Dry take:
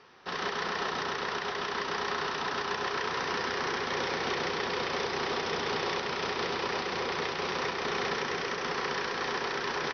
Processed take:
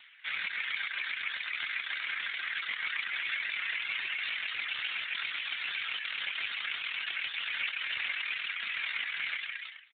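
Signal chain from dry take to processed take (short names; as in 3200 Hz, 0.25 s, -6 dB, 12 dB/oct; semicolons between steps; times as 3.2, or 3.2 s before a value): ending faded out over 0.60 s; HPF 1400 Hz 24 dB/oct; reverb removal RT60 0.95 s; LPF 2300 Hz 6 dB/oct; tilt +4.5 dB/oct; pitch shift +3.5 st; soft clip -31 dBFS, distortion -14 dB; feedback echo 0.217 s, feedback 37%, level -23.5 dB; gain +8.5 dB; AMR-NB 7.4 kbps 8000 Hz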